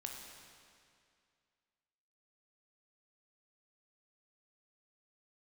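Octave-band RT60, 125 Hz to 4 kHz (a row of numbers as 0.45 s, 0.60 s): 2.3 s, 2.3 s, 2.3 s, 2.3 s, 2.2 s, 2.1 s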